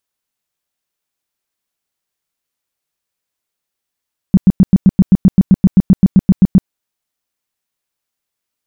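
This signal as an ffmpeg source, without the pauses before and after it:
ffmpeg -f lavfi -i "aevalsrc='0.794*sin(2*PI*189*mod(t,0.13))*lt(mod(t,0.13),6/189)':duration=2.34:sample_rate=44100" out.wav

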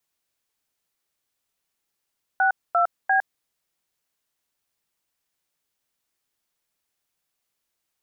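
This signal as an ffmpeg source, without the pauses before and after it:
ffmpeg -f lavfi -i "aevalsrc='0.112*clip(min(mod(t,0.347),0.108-mod(t,0.347))/0.002,0,1)*(eq(floor(t/0.347),0)*(sin(2*PI*770*mod(t,0.347))+sin(2*PI*1477*mod(t,0.347)))+eq(floor(t/0.347),1)*(sin(2*PI*697*mod(t,0.347))+sin(2*PI*1336*mod(t,0.347)))+eq(floor(t/0.347),2)*(sin(2*PI*770*mod(t,0.347))+sin(2*PI*1633*mod(t,0.347))))':duration=1.041:sample_rate=44100" out.wav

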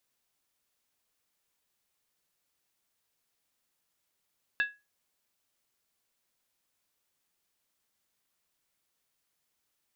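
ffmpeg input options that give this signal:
ffmpeg -f lavfi -i "aevalsrc='0.0841*pow(10,-3*t/0.25)*sin(2*PI*1670*t)+0.0335*pow(10,-3*t/0.198)*sin(2*PI*2662*t)+0.0133*pow(10,-3*t/0.171)*sin(2*PI*3567.1*t)+0.00531*pow(10,-3*t/0.165)*sin(2*PI*3834.3*t)+0.00211*pow(10,-3*t/0.153)*sin(2*PI*4430.5*t)':duration=0.63:sample_rate=44100" out.wav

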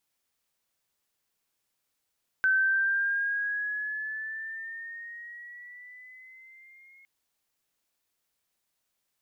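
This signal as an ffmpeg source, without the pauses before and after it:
ffmpeg -f lavfi -i "aevalsrc='pow(10,(-20-33*t/4.61)/20)*sin(2*PI*1530*4.61/(6*log(2)/12)*(exp(6*log(2)/12*t/4.61)-1))':duration=4.61:sample_rate=44100" out.wav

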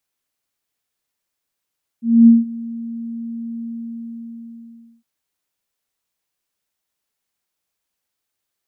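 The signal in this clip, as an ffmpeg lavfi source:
ffmpeg -f lavfi -i "aevalsrc='0.668*sin(2*PI*231*t)':duration=3.01:sample_rate=44100,afade=type=in:duration=0.25,afade=type=out:start_time=0.25:duration=0.175:silence=0.0841,afade=type=out:start_time=1.6:duration=1.41" out.wav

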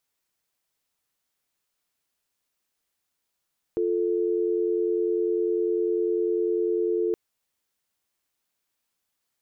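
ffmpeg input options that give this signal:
ffmpeg -f lavfi -i "aevalsrc='0.0596*(sin(2*PI*350*t)+sin(2*PI*440*t))':duration=3.37:sample_rate=44100" out.wav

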